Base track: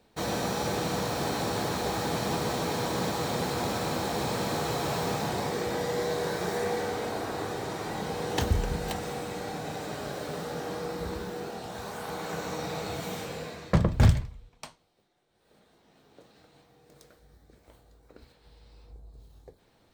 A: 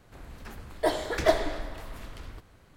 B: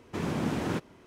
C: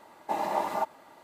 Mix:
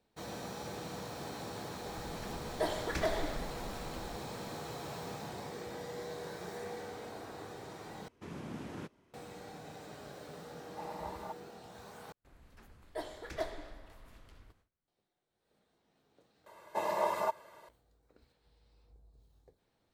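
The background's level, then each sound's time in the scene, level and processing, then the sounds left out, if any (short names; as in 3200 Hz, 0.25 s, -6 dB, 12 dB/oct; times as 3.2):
base track -13 dB
1.77 add A -5.5 dB + limiter -16 dBFS
8.08 replace with B -13.5 dB
10.48 add C -15 dB
12.12 replace with A -15 dB + gate with hold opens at -44 dBFS, closes at -51 dBFS
16.46 replace with C -3.5 dB + comb 1.9 ms, depth 71%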